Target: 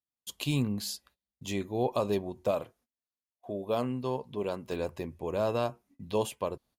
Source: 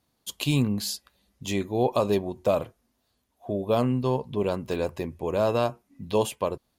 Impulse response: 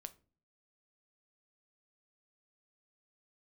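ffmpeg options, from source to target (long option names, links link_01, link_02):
-filter_complex "[0:a]agate=range=-25dB:threshold=-54dB:ratio=16:detection=peak,asettb=1/sr,asplit=3[link_01][link_02][link_03];[link_01]atrim=end=2.514[link_04];[link_02]atrim=start=2.51:end=4.72,asetpts=PTS-STARTPTS,afade=type=in:duration=0.004:curve=qsin,afade=type=out:start_time=2.206:duration=0.004:curve=qsin,lowshelf=frequency=150:gain=-9[link_05];[link_03]atrim=start=4.716[link_06];[link_04][link_05]acrossfade=duration=0.004:curve1=hsin:curve2=qsin[link_07];[link_07][link_06]acrossfade=duration=0.004:curve1=qsin:curve2=hsin,volume=-5.5dB"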